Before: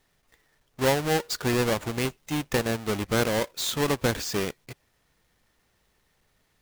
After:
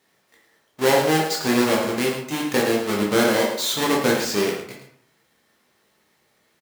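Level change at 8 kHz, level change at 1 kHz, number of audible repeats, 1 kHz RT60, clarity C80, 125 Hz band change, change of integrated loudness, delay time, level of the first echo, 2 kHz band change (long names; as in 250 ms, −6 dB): +5.0 dB, +6.5 dB, 1, 0.60 s, 6.5 dB, −1.5 dB, +6.0 dB, 108 ms, −9.5 dB, +6.0 dB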